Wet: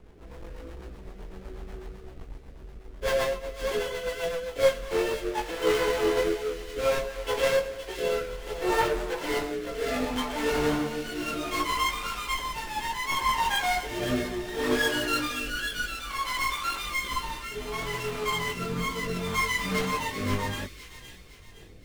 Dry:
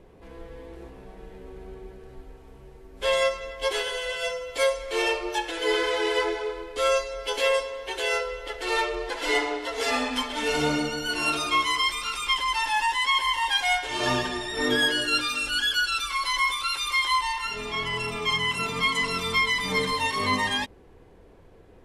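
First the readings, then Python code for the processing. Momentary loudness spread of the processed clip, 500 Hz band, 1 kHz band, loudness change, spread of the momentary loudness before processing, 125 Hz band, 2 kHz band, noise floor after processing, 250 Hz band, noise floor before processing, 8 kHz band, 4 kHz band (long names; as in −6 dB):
19 LU, 0.0 dB, −3.0 dB, −3.5 dB, 8 LU, +2.5 dB, −5.0 dB, −47 dBFS, +1.0 dB, −51 dBFS, −2.5 dB, −7.5 dB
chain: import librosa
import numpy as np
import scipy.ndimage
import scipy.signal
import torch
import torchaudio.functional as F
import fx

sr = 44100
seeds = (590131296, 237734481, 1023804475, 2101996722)

p1 = fx.halfwave_hold(x, sr)
p2 = fx.high_shelf(p1, sr, hz=3000.0, db=-8.5)
p3 = fx.chorus_voices(p2, sr, voices=6, hz=0.94, base_ms=19, depth_ms=3.0, mix_pct=40)
p4 = fx.rotary_switch(p3, sr, hz=8.0, then_hz=0.65, switch_at_s=4.26)
y = p4 + fx.echo_wet_highpass(p4, sr, ms=515, feedback_pct=43, hz=2400.0, wet_db=-9.0, dry=0)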